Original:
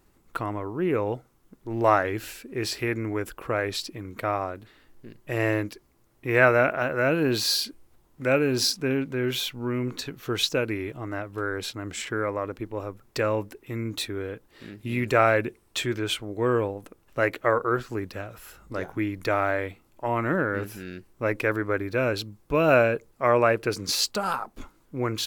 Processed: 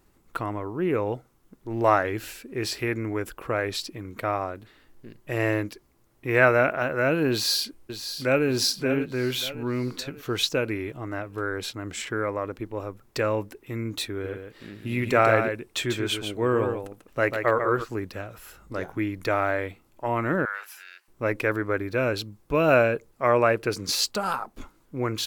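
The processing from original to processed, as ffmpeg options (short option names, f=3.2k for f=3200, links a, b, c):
-filter_complex "[0:a]asplit=2[a][b];[b]afade=t=in:st=7.31:d=0.01,afade=t=out:st=8.47:d=0.01,aecho=0:1:580|1160|1740|2320|2900:0.334965|0.150734|0.0678305|0.0305237|0.0137357[c];[a][c]amix=inputs=2:normalize=0,asplit=3[d][e][f];[d]afade=t=out:st=14.23:d=0.02[g];[e]aecho=1:1:143:0.473,afade=t=in:st=14.23:d=0.02,afade=t=out:st=17.83:d=0.02[h];[f]afade=t=in:st=17.83:d=0.02[i];[g][h][i]amix=inputs=3:normalize=0,asettb=1/sr,asplit=3[j][k][l];[j]atrim=end=20.454[m];[k]atrim=start=20.45:end=21.08,asetpts=PTS-STARTPTS,afade=t=in:d=0.004:c=qsin,afade=t=out:st=0.626:d=0.004:c=qsin,highpass=f=920:w=0.5412,highpass=f=920:w=1.3066[n];[l]atrim=start=21.076[o];[m][n]acrossfade=d=0.004:c1=hsin:c2=qsin[p];[p][o]acrossfade=d=0.004:c1=qsin:c2=hsin"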